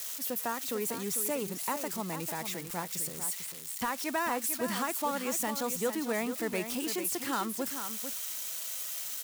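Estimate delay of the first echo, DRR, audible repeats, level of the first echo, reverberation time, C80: 447 ms, no reverb, 1, -9.0 dB, no reverb, no reverb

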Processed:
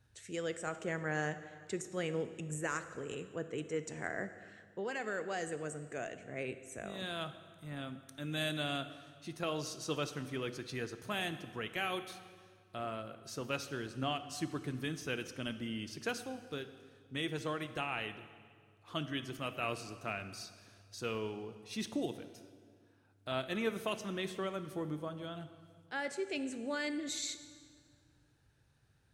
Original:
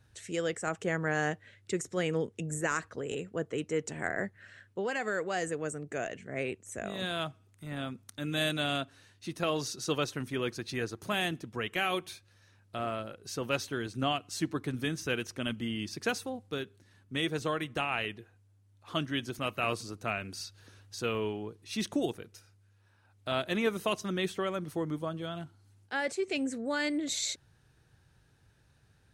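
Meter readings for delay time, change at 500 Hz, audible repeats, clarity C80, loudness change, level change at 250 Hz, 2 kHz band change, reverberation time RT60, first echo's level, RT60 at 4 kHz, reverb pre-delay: no echo, -5.5 dB, no echo, 13.0 dB, -5.5 dB, -5.5 dB, -5.5 dB, 1.9 s, no echo, 1.6 s, 6 ms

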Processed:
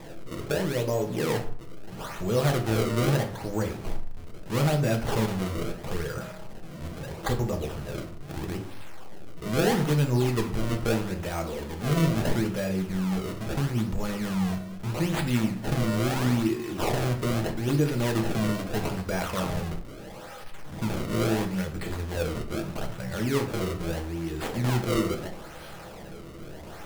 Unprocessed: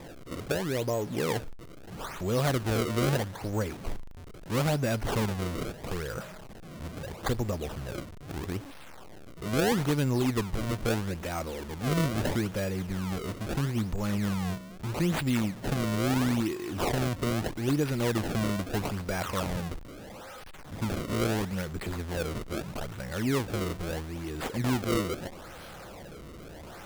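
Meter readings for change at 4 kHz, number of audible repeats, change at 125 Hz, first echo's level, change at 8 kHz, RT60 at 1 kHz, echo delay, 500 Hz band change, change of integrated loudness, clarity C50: +1.5 dB, no echo, +3.5 dB, no echo, +1.0 dB, 0.55 s, no echo, +2.5 dB, +2.5 dB, 10.5 dB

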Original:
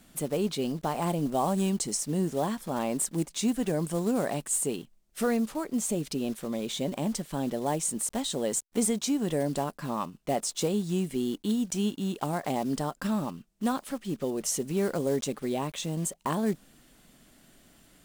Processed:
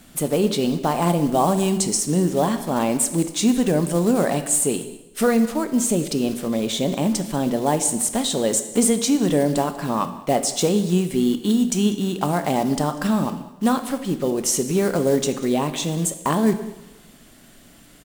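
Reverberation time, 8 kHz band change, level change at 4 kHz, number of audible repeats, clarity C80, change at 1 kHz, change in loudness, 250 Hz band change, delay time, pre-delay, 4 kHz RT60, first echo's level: 1.0 s, +9.0 dB, +9.0 dB, 1, 12.5 dB, +9.0 dB, +9.0 dB, +9.0 dB, 194 ms, 15 ms, 0.90 s, -20.5 dB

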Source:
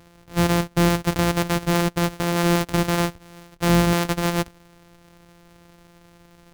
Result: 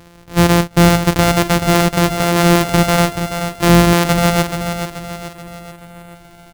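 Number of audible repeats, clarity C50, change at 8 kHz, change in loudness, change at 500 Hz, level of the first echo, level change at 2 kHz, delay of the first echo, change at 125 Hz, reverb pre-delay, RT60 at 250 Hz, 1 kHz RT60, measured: 5, no reverb, +8.5 dB, +8.0 dB, +8.5 dB, -8.0 dB, +8.5 dB, 431 ms, +8.0 dB, no reverb, no reverb, no reverb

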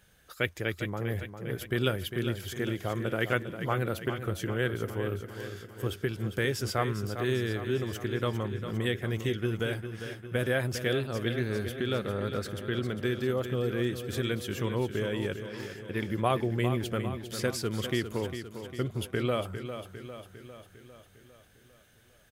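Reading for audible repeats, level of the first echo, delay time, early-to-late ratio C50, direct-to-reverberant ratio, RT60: 6, -9.5 dB, 402 ms, no reverb, no reverb, no reverb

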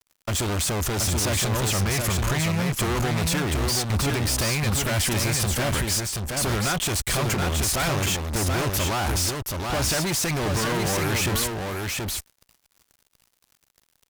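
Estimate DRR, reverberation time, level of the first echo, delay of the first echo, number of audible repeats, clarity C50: no reverb, no reverb, -4.0 dB, 728 ms, 1, no reverb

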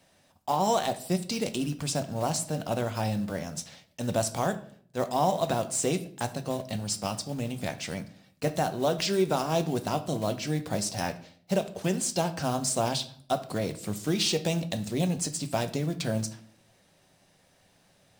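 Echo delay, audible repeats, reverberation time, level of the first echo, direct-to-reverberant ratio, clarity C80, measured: no echo, no echo, 0.55 s, no echo, 8.0 dB, 18.0 dB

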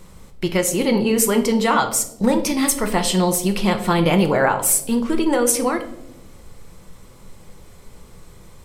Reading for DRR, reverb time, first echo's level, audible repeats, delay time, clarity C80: 5.5 dB, 0.90 s, no echo, no echo, no echo, 14.0 dB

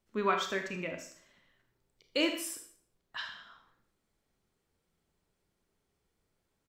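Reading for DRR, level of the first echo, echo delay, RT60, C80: 4.0 dB, -12.0 dB, 78 ms, 0.50 s, 11.5 dB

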